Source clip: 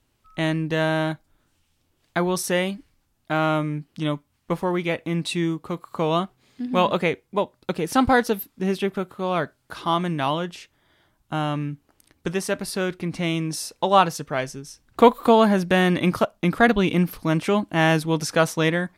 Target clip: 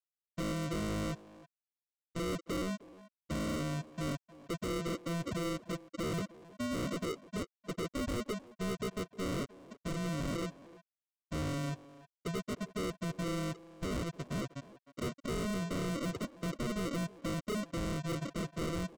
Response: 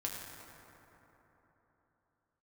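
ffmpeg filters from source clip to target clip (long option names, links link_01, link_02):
-filter_complex "[0:a]afftfilt=real='re*gte(hypot(re,im),0.158)':imag='im*gte(hypot(re,im),0.158)':win_size=1024:overlap=0.75,asplit=2[link_01][link_02];[link_02]acompressor=threshold=-28dB:ratio=8,volume=1dB[link_03];[link_01][link_03]amix=inputs=2:normalize=0,alimiter=limit=-11dB:level=0:latency=1:release=117,aresample=16000,acrusher=samples=19:mix=1:aa=0.000001,aresample=44100,asoftclip=type=tanh:threshold=-27dB,asplit=2[link_04][link_05];[link_05]adelay=310,highpass=300,lowpass=3400,asoftclip=type=hard:threshold=-35dB,volume=-10dB[link_06];[link_04][link_06]amix=inputs=2:normalize=0,volume=-6dB"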